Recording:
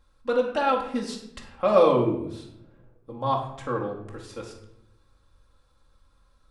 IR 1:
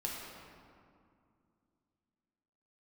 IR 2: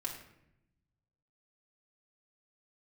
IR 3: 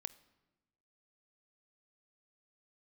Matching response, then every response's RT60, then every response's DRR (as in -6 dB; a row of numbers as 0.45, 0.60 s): 2; 2.3, 0.80, 1.1 s; -3.5, -2.5, 14.5 dB